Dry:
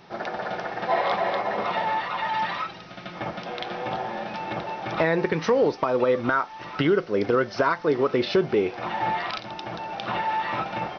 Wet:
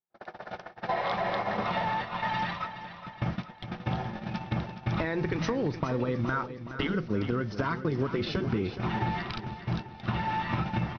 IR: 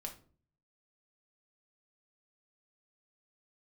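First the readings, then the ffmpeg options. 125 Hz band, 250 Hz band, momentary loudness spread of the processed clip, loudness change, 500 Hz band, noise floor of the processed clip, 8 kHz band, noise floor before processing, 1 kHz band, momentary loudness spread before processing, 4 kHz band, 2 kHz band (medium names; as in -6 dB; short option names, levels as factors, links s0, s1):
+4.5 dB, -2.5 dB, 8 LU, -5.5 dB, -10.0 dB, -49 dBFS, no reading, -42 dBFS, -6.5 dB, 11 LU, -5.5 dB, -6.0 dB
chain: -af "asubboost=boost=9.5:cutoff=170,afftfilt=real='re*lt(hypot(re,im),1.12)':imag='im*lt(hypot(re,im),1.12)':win_size=1024:overlap=0.75,agate=range=0.00282:threshold=0.0398:ratio=16:detection=peak,acompressor=threshold=0.0501:ratio=6,aecho=1:1:419|838|1257|1676|2095:0.266|0.136|0.0692|0.0353|0.018"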